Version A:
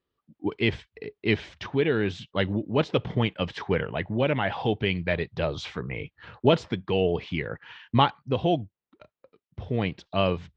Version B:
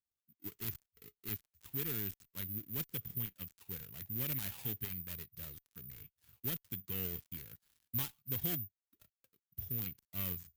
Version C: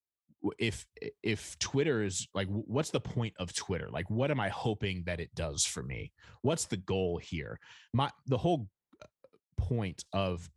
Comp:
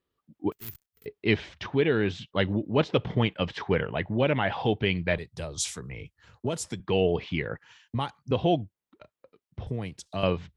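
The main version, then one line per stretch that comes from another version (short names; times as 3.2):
A
0.52–1.06 from B
5.18–6.8 from C
7.59–8.31 from C
9.67–10.23 from C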